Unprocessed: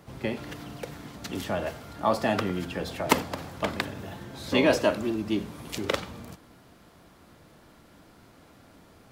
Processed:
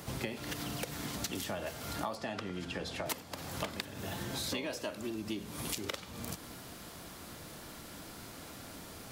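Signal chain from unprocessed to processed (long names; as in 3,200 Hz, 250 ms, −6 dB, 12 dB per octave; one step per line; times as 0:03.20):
high-shelf EQ 3,400 Hz +11.5 dB
downward compressor 16 to 1, threshold −39 dBFS, peak gain reduction 27.5 dB
0:02.15–0:03.06: high-frequency loss of the air 63 metres
level +4.5 dB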